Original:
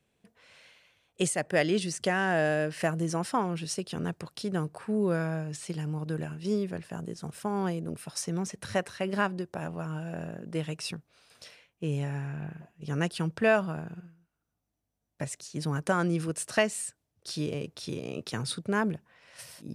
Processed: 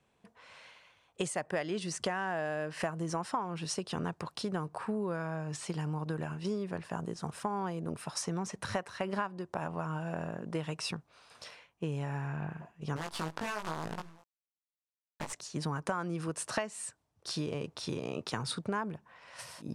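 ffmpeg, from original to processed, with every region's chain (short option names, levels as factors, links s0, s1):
-filter_complex "[0:a]asettb=1/sr,asplit=3[s0][s1][s2];[s0]atrim=end=12.964[s3];[s1]atrim=start=12.96:end=15.33,asetpts=PTS-STARTPTS,afade=t=in:d=0.004:c=qsin,afade=t=out:st=2.366:d=0.004:c=qsin,acompressor=threshold=0.0158:ratio=16:attack=3.2:release=140:knee=1:detection=peak,acrusher=bits=7:dc=4:mix=0:aa=0.000001,asplit=2[s4][s5];[s5]adelay=19,volume=0.668[s6];[s4][s6]amix=inputs=2:normalize=0,atrim=end_sample=104517[s7];[s2]atrim=start=15.326[s8];[s3][s7]acrossfade=d=0.004:c1=hsin:c2=qsin[s9];[s9][s8]acrossfade=d=0.004:c1=qsin:c2=hsin,lowpass=9600,equalizer=f=1000:t=o:w=0.97:g=9.5,acompressor=threshold=0.0282:ratio=6"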